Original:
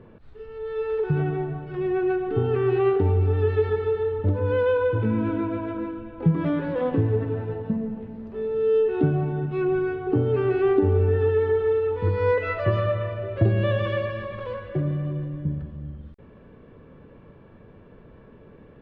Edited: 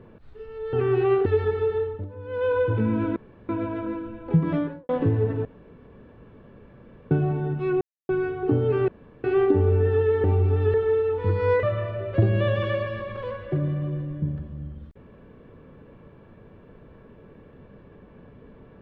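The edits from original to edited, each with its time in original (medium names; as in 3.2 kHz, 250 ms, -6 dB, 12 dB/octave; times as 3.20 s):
0.73–2.48 s: delete
3.01–3.51 s: move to 11.52 s
4.04–4.79 s: dip -14.5 dB, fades 0.26 s
5.41 s: insert room tone 0.33 s
6.44–6.81 s: studio fade out
7.37–9.03 s: room tone
9.73 s: insert silence 0.28 s
10.52 s: insert room tone 0.36 s
12.41–12.86 s: delete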